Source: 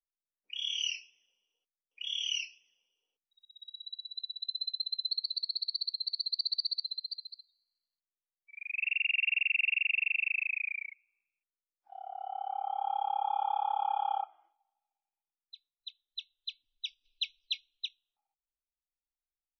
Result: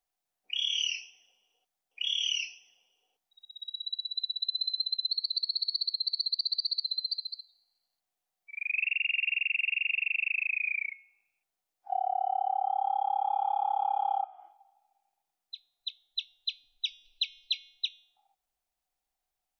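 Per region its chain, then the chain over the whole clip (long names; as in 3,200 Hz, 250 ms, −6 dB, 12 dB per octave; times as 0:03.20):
0:04.06–0:04.73: low-shelf EQ 130 Hz −9 dB + notch filter 1,700 Hz, Q 23
whole clip: parametric band 740 Hz +14.5 dB 0.35 octaves; hum removal 312.3 Hz, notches 39; downward compressor 10 to 1, threshold −34 dBFS; level +8 dB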